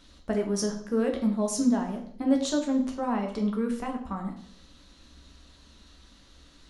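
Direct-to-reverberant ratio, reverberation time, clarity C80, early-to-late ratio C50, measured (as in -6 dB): 2.0 dB, 0.60 s, 11.5 dB, 8.0 dB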